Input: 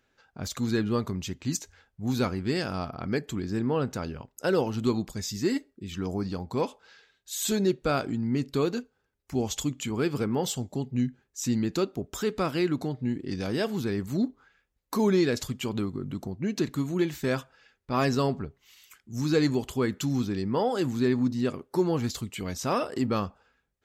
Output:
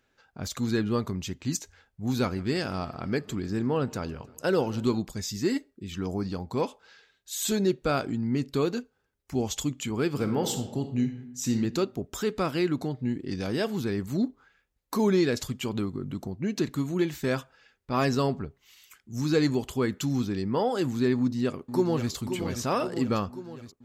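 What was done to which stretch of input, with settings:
0:02.15–0:05.00: feedback echo with a swinging delay time 156 ms, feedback 64%, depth 111 cents, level −22.5 dB
0:10.11–0:11.53: thrown reverb, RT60 0.83 s, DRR 6 dB
0:21.15–0:22.12: delay throw 530 ms, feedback 65%, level −8.5 dB

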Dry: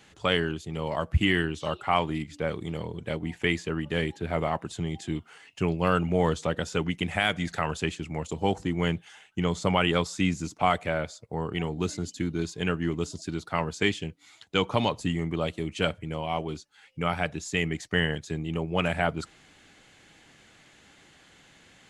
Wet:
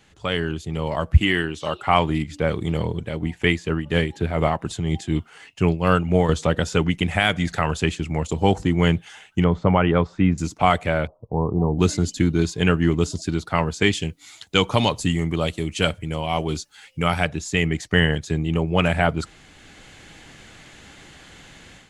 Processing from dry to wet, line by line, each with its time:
0:01.20–0:01.87: low-shelf EQ 150 Hz −11 dB
0:02.93–0:06.29: shaped tremolo triangle 4.1 Hz, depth 60%
0:09.44–0:10.38: low-pass filter 1,600 Hz
0:11.07–0:11.79: Butterworth low-pass 1,100 Hz 72 dB per octave
0:13.93–0:17.25: high-shelf EQ 4,000 Hz +9.5 dB
whole clip: low-shelf EQ 79 Hz +11 dB; automatic gain control; level −1.5 dB

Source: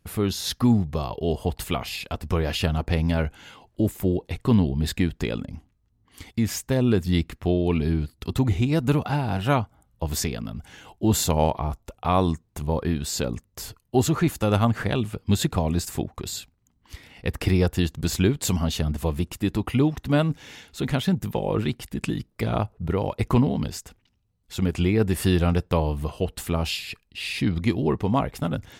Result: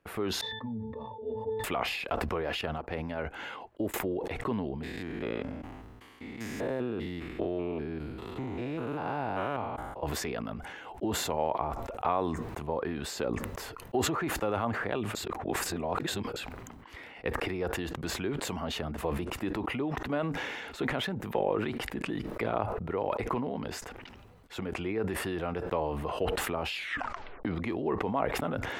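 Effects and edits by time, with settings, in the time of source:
0:00.41–0:01.64: resonances in every octave A, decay 0.23 s
0:02.61–0:03.94: expander for the loud parts 2.5 to 1, over −40 dBFS
0:04.83–0:10.03: spectrum averaged block by block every 200 ms
0:15.15–0:16.36: reverse
0:26.74: tape stop 0.71 s
whole clip: downward compressor, threshold −27 dBFS; three-way crossover with the lows and the highs turned down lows −16 dB, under 310 Hz, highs −17 dB, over 2,500 Hz; level that may fall only so fast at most 28 dB per second; level +3.5 dB

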